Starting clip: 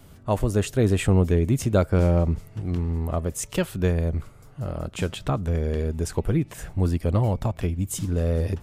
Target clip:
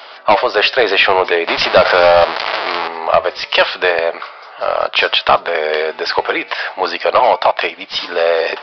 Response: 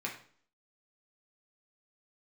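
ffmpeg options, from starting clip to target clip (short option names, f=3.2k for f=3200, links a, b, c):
-filter_complex "[0:a]asettb=1/sr,asplit=3[a][b][c];[a]atrim=end=1.474[d];[b]atrim=start=1.47:end=2.88,asetpts=PTS-STARTPTS,afade=t=in:d=0.004:c=qsin,afade=t=out:st=1.406:d=0.004:c=qsin,aeval=exprs='val(0)+0.5*0.0422*sgn(val(0))':c=same[e];[c]atrim=start=2.876[f];[d][e]acrossfade=d=0.004:c1=hsin:c2=qsin[g];[g][f]acrossfade=d=0.004:c1=qsin:c2=hsin,highpass=f=660:w=0.5412,highpass=f=660:w=1.3066,asoftclip=type=tanh:threshold=-27.5dB,flanger=delay=2:depth=7.8:regen=-90:speed=0.39:shape=triangular,aresample=11025,aresample=44100,alimiter=level_in=31dB:limit=-1dB:release=50:level=0:latency=1,volume=-1dB"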